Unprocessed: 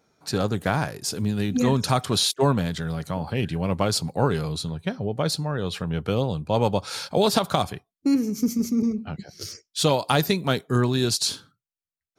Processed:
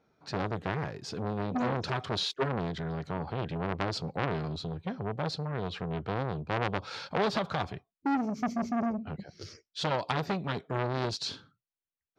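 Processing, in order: air absorption 190 m; core saturation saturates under 1800 Hz; gain -3 dB

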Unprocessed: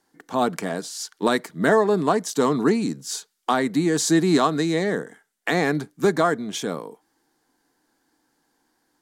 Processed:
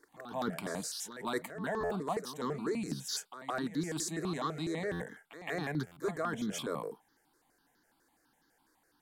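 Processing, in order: reverse; compressor 6:1, threshold -29 dBFS, peak gain reduction 15 dB; reverse; reverse echo 0.165 s -12 dB; stuck buffer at 1.8/4.91/5.86, samples 512, times 8; step phaser 12 Hz 760–2500 Hz

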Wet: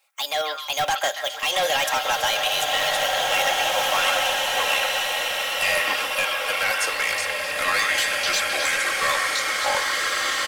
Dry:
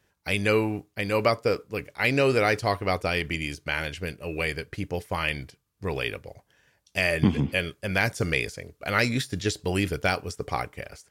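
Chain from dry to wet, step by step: speed glide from 145% -> 67%; HPF 650 Hz 24 dB/oct; high shelf 6900 Hz +6 dB; comb 3.7 ms, depth 55%; in parallel at -3 dB: level quantiser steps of 13 dB; on the sum: limiter -13.5 dBFS, peak gain reduction 8 dB; AGC gain up to 4.5 dB; overloaded stage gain 18.5 dB; on a send: delay with a stepping band-pass 0.131 s, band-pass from 1500 Hz, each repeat 1.4 oct, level -2 dB; on the sum: bloom reverb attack 2.46 s, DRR -1.5 dB

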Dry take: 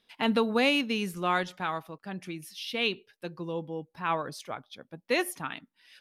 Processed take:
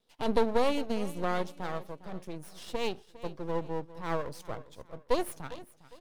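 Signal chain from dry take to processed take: graphic EQ 125/500/2000/8000 Hz +10/+10/-9/+5 dB; half-wave rectifier; feedback echo 0.405 s, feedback 34%, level -17 dB; gain -3.5 dB

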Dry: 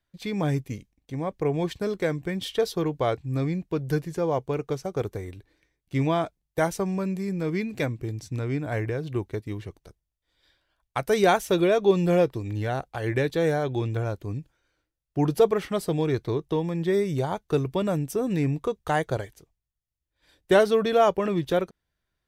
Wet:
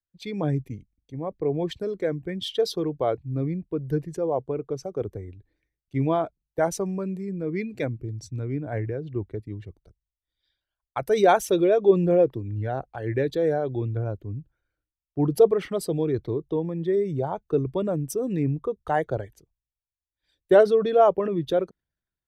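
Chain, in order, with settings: formant sharpening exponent 1.5; three-band expander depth 40%

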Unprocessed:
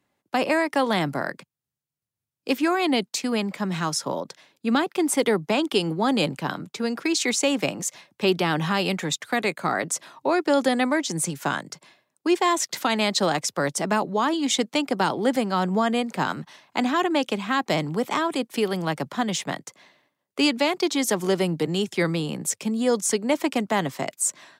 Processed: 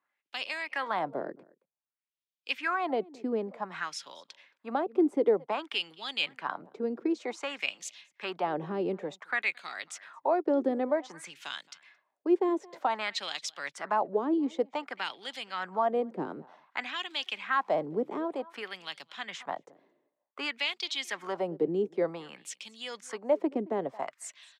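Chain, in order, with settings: 17.09–18.34 crackle 310/s -39 dBFS; outdoor echo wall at 38 m, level -23 dB; wah 0.54 Hz 360–3500 Hz, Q 2.4

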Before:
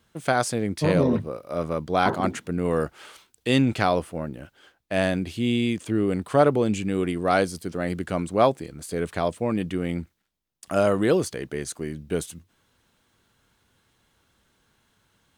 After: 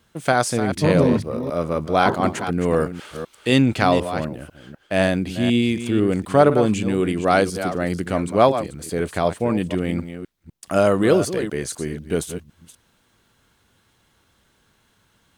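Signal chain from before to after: reverse delay 0.25 s, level -10 dB; gain +4 dB

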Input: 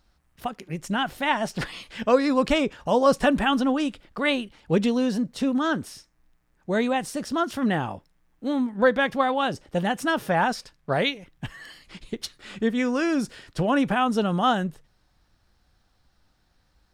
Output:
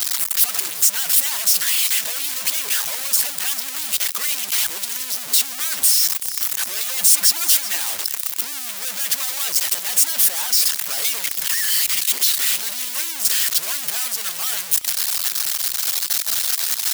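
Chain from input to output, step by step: infinite clipping; differentiator; on a send: thin delay 0.381 s, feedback 56%, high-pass 2100 Hz, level -13 dB; on the sum: harmonic-percussive split percussive +9 dB; 6.82–7.78 comb 5.8 ms, depth 59%; gain +4 dB

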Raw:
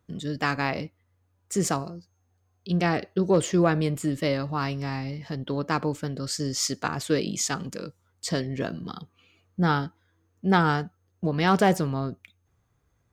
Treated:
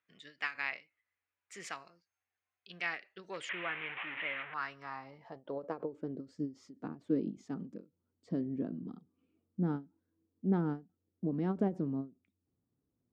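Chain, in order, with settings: 3.49–4.54 delta modulation 16 kbps, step -23.5 dBFS; band-pass sweep 2200 Hz -> 260 Hz, 4.35–6.34; ending taper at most 230 dB/s; gain -2 dB

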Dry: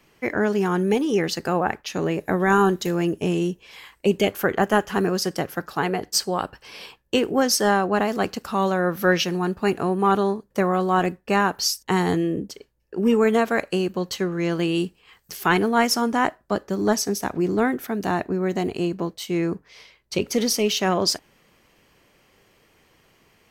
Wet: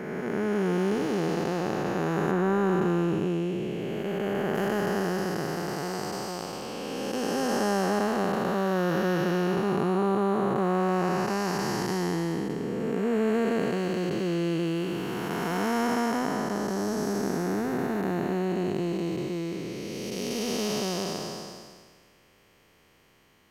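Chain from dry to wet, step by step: time blur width 0.842 s; 2.31–4.55 high shelf 3600 Hz -7.5 dB

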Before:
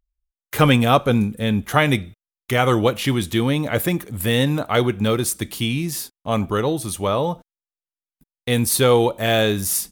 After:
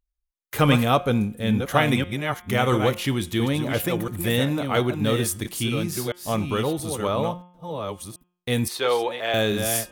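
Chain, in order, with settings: reverse delay 0.68 s, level -6 dB; 8.68–9.34 three-band isolator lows -22 dB, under 390 Hz, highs -16 dB, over 5000 Hz; de-hum 178 Hz, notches 19; gain -4 dB

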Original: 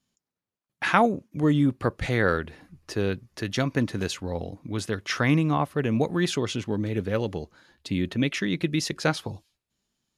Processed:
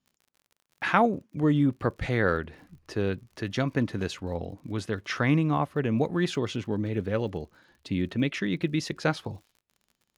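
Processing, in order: high shelf 5100 Hz -10 dB; crackle 55/s -46 dBFS; gain -1.5 dB

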